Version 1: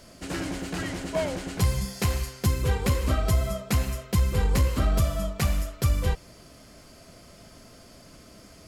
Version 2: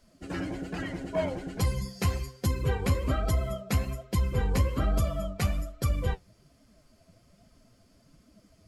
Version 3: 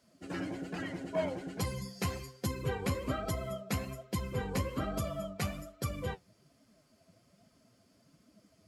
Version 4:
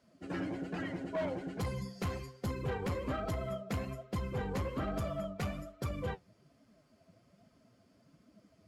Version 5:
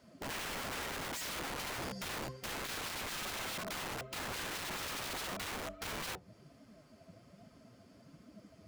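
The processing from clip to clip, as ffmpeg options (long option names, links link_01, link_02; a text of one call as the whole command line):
ffmpeg -i in.wav -af "afftdn=noise_reduction=13:noise_floor=-38,flanger=delay=3.2:depth=8.4:regen=54:speed=1.2:shape=triangular,volume=2dB" out.wav
ffmpeg -i in.wav -af "highpass=120,volume=-3.5dB" out.wav
ffmpeg -i in.wav -af "asoftclip=type=hard:threshold=-31.5dB,highshelf=frequency=4200:gain=-10.5,volume=1dB" out.wav
ffmpeg -i in.wav -filter_complex "[0:a]acrossover=split=1100[link_01][link_02];[link_01]aeval=exprs='(mod(133*val(0)+1,2)-1)/133':channel_layout=same[link_03];[link_02]acompressor=threshold=-56dB:ratio=6[link_04];[link_03][link_04]amix=inputs=2:normalize=0,volume=6.5dB" out.wav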